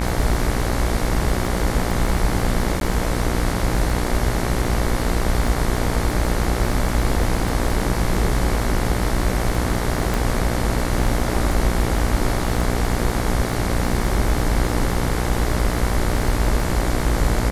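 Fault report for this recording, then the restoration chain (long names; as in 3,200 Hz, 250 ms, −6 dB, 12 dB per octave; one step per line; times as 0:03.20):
mains buzz 60 Hz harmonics 38 −24 dBFS
surface crackle 38 per second −26 dBFS
0:02.80–0:02.81: drop-out 12 ms
0:10.14: click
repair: click removal
hum removal 60 Hz, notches 38
repair the gap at 0:02.80, 12 ms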